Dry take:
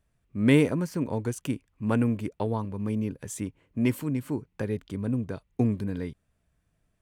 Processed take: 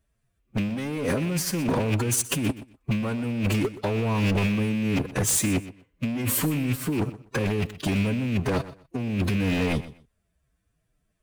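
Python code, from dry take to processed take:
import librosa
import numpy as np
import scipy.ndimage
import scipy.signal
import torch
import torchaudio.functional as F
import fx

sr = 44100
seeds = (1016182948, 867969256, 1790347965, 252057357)

p1 = fx.rattle_buzz(x, sr, strikes_db=-31.0, level_db=-29.0)
p2 = fx.high_shelf(p1, sr, hz=5500.0, db=3.0)
p3 = fx.notch(p2, sr, hz=880.0, q=12.0)
p4 = fx.leveller(p3, sr, passes=3)
p5 = fx.over_compress(p4, sr, threshold_db=-24.0, ratio=-1.0)
p6 = fx.stretch_vocoder(p5, sr, factor=1.6)
p7 = 10.0 ** (-17.5 / 20.0) * (np.abs((p6 / 10.0 ** (-17.5 / 20.0) + 3.0) % 4.0 - 2.0) - 1.0)
y = p7 + fx.echo_feedback(p7, sr, ms=124, feedback_pct=20, wet_db=-16, dry=0)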